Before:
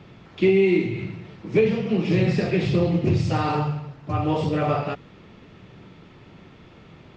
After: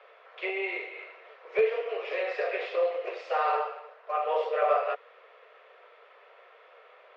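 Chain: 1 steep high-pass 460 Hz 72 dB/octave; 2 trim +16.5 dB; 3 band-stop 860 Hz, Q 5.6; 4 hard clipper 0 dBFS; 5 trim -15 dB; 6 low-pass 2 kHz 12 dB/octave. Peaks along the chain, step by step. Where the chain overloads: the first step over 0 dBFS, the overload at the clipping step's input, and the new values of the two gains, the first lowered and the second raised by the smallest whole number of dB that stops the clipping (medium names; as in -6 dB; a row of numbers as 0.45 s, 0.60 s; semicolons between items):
-12.0 dBFS, +4.5 dBFS, +4.5 dBFS, 0.0 dBFS, -15.0 dBFS, -15.0 dBFS; step 2, 4.5 dB; step 2 +11.5 dB, step 5 -10 dB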